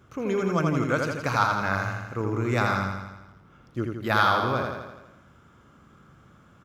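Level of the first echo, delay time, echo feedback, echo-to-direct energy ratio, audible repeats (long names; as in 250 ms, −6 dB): −4.0 dB, 83 ms, 59%, −2.0 dB, 7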